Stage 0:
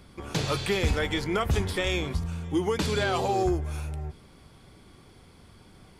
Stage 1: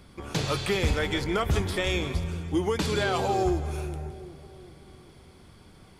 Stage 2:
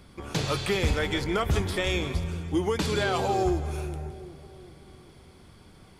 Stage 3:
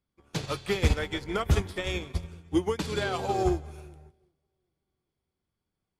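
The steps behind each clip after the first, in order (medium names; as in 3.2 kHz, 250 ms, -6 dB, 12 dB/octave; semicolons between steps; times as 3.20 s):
two-band feedback delay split 650 Hz, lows 381 ms, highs 164 ms, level -13.5 dB
no audible change
upward expansion 2.5:1, over -45 dBFS; trim +4 dB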